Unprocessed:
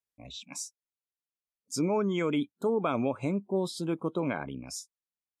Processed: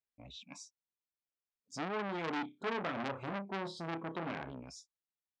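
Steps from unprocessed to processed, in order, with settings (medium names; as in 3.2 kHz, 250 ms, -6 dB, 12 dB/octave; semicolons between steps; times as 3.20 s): distance through air 140 m; 2.06–4.52 s: flutter echo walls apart 5.2 m, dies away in 0.23 s; transformer saturation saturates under 2.1 kHz; trim -3.5 dB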